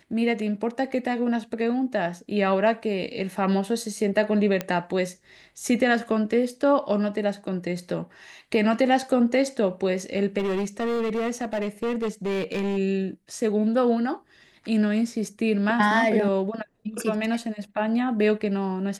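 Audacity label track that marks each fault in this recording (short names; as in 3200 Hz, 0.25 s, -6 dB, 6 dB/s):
4.610000	4.610000	pop -12 dBFS
10.380000	12.780000	clipped -22.5 dBFS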